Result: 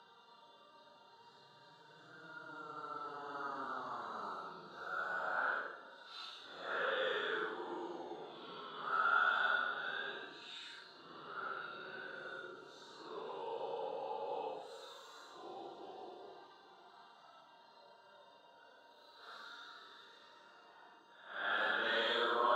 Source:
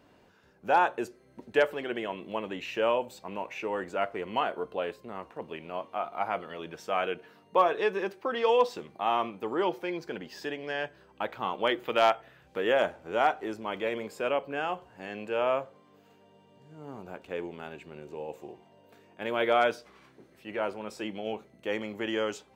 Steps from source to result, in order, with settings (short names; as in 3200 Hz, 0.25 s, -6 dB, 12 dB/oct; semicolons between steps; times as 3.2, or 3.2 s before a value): Paulstretch 7.8×, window 0.05 s, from 16.45; double band-pass 2300 Hz, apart 1.5 oct; gain +16.5 dB